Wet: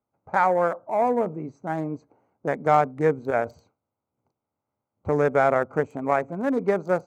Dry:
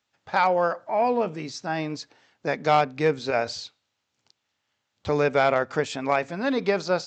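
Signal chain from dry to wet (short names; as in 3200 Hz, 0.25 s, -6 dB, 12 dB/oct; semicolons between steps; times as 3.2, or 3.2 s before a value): Wiener smoothing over 25 samples; band shelf 3700 Hz -15 dB 1.3 oct; gain +1.5 dB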